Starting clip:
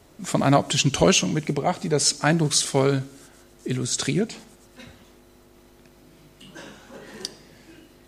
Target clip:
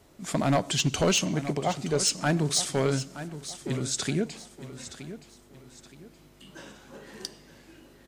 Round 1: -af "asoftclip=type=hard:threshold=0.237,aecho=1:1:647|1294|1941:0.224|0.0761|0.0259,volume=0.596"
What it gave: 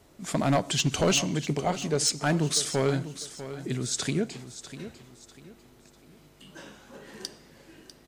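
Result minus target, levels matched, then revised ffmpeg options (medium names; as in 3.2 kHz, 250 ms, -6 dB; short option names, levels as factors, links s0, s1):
echo 274 ms early
-af "asoftclip=type=hard:threshold=0.237,aecho=1:1:921|1842|2763:0.224|0.0761|0.0259,volume=0.596"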